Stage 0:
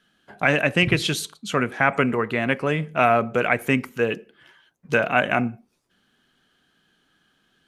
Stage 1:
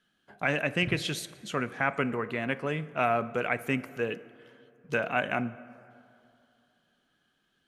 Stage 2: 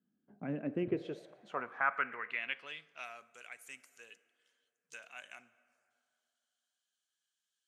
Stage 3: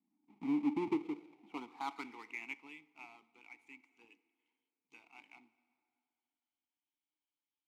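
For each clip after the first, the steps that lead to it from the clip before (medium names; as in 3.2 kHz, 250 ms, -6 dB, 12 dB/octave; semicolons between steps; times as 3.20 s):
plate-style reverb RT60 2.8 s, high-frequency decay 0.5×, DRR 16.5 dB; trim -8.5 dB
band-pass sweep 230 Hz -> 7.4 kHz, 0.54–3.26 s; trim +1 dB
square wave that keeps the level; vowel filter u; trim +5.5 dB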